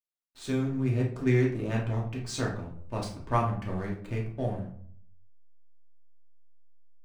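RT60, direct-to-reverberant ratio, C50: 0.60 s, −3.0 dB, 6.5 dB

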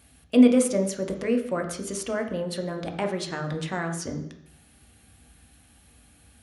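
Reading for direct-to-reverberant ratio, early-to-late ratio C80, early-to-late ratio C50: 3.5 dB, 11.5 dB, 8.0 dB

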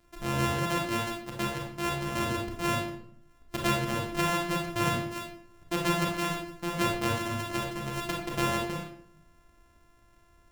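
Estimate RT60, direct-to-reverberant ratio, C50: 0.65 s, −1.0 dB, 3.5 dB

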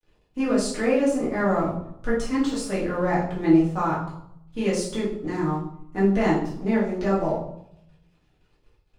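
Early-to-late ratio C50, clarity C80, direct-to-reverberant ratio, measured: 4.0 dB, 8.0 dB, −9.0 dB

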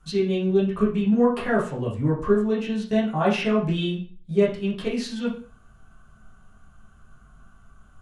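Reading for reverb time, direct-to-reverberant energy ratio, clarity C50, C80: 0.40 s, −7.0 dB, 7.5 dB, 13.0 dB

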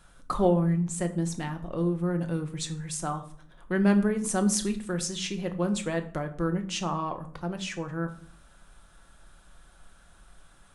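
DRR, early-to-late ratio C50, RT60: 6.0 dB, 13.5 dB, 0.55 s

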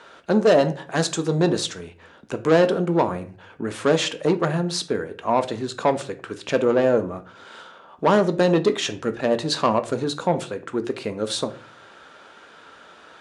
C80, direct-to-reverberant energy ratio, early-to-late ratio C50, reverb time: 20.0 dB, 8.5 dB, 16.0 dB, 0.40 s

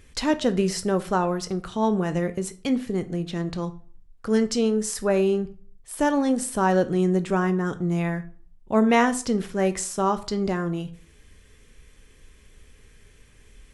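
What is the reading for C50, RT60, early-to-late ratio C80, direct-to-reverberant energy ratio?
17.0 dB, 0.45 s, 21.0 dB, 10.5 dB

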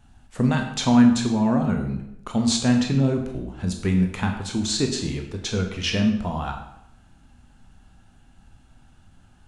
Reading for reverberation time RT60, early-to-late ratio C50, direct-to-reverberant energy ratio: 0.80 s, 7.0 dB, 3.0 dB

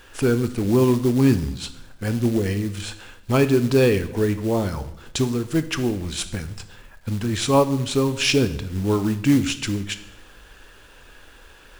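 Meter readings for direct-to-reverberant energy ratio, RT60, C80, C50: 11.0 dB, 0.80 s, 16.5 dB, 14.0 dB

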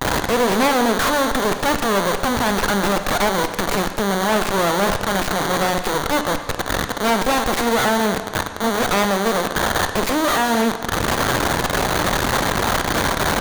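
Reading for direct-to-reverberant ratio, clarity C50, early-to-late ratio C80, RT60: 7.5 dB, 9.0 dB, 10.5 dB, 1.5 s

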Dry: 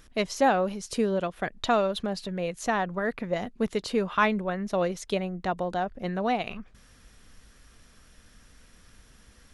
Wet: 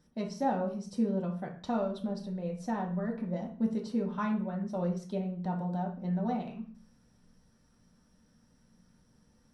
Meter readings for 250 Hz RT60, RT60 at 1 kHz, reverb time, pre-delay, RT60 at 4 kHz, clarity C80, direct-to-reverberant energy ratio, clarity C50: 0.75 s, 0.40 s, 0.45 s, 3 ms, 0.40 s, 13.5 dB, −1.0 dB, 8.0 dB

